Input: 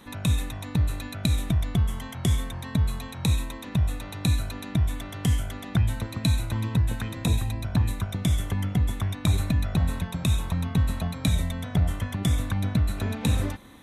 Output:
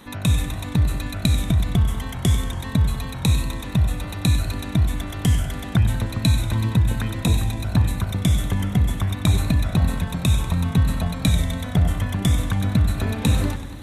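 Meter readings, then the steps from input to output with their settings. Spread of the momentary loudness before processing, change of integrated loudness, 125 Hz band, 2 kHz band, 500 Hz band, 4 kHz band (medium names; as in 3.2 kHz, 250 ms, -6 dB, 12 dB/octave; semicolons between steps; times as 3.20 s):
4 LU, +5.0 dB, +5.0 dB, +5.0 dB, +5.0 dB, +5.0 dB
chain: modulated delay 95 ms, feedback 69%, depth 114 cents, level -13 dB; trim +4.5 dB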